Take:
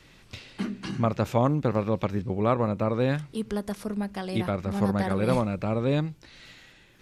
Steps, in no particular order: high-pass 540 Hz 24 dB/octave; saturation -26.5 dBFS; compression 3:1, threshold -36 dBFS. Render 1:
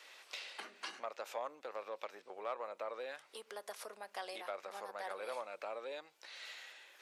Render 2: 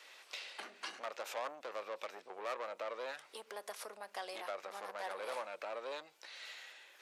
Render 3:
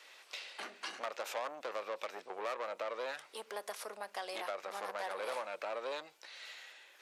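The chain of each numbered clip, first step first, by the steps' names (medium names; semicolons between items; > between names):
compression > saturation > high-pass; saturation > compression > high-pass; saturation > high-pass > compression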